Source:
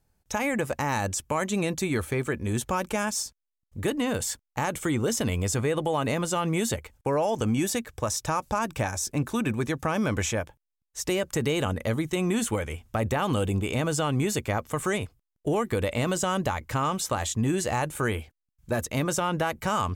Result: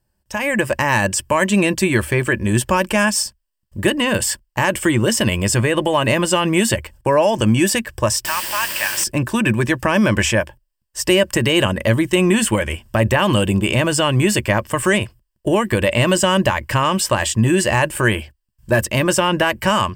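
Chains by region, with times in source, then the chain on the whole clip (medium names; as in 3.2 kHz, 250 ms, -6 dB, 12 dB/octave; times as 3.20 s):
8.25–9.04 s: high-pass 1.3 kHz + word length cut 6-bit, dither triangular
whole clip: dynamic bell 2.3 kHz, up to +7 dB, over -47 dBFS, Q 1.8; level rider gain up to 9 dB; rippled EQ curve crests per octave 1.3, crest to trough 9 dB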